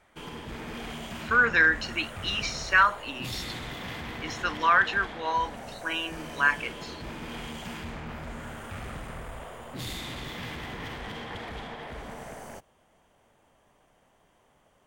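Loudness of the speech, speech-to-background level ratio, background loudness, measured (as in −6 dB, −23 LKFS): −25.5 LKFS, 13.5 dB, −39.0 LKFS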